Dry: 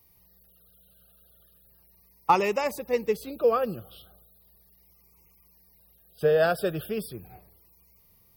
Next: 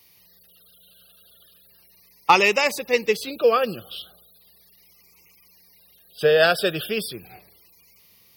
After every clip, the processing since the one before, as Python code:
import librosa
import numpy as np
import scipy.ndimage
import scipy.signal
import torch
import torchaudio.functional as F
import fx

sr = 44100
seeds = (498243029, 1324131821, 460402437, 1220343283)

y = fx.weighting(x, sr, curve='D')
y = F.gain(torch.from_numpy(y), 4.5).numpy()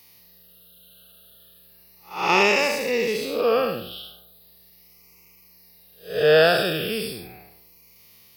y = fx.spec_blur(x, sr, span_ms=218.0)
y = F.gain(torch.from_numpy(y), 5.0).numpy()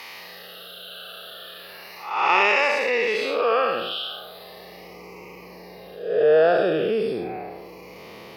y = fx.filter_sweep_bandpass(x, sr, from_hz=1400.0, to_hz=460.0, start_s=4.19, end_s=4.99, q=0.76)
y = fx.bass_treble(y, sr, bass_db=-5, treble_db=-5)
y = fx.env_flatten(y, sr, amount_pct=50)